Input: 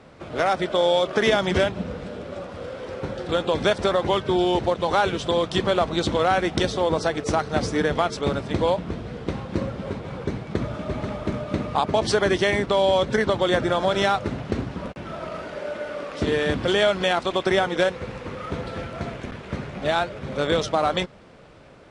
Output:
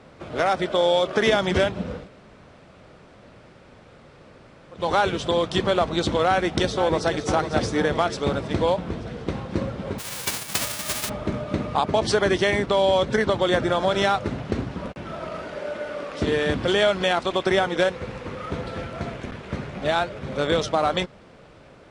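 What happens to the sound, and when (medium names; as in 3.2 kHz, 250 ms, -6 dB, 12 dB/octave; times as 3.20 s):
2.03–4.79 s: room tone, crossfade 0.16 s
6.27–7.11 s: echo throw 500 ms, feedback 60%, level -9.5 dB
9.98–11.08 s: formants flattened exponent 0.1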